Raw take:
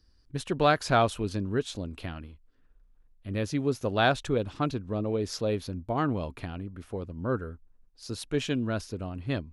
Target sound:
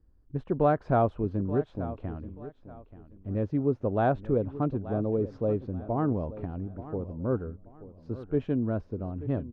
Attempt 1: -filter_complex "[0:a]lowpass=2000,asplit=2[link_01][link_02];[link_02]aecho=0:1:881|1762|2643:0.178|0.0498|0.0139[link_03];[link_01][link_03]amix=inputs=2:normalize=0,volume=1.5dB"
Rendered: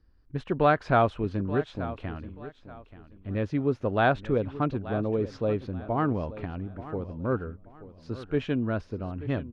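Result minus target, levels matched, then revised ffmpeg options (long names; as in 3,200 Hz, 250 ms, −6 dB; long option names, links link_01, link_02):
2,000 Hz band +9.5 dB
-filter_complex "[0:a]lowpass=800,asplit=2[link_01][link_02];[link_02]aecho=0:1:881|1762|2643:0.178|0.0498|0.0139[link_03];[link_01][link_03]amix=inputs=2:normalize=0,volume=1.5dB"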